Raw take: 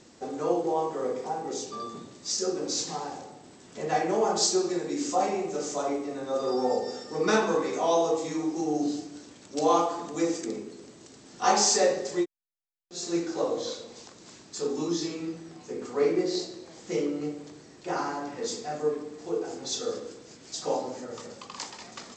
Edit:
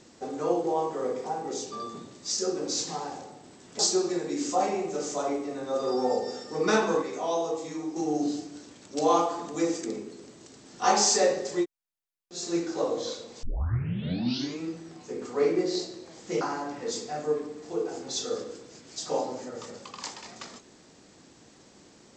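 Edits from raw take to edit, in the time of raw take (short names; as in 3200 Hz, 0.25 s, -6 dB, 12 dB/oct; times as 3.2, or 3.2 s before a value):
3.79–4.39 cut
7.62–8.56 gain -4.5 dB
14.03 tape start 1.18 s
17.01–17.97 cut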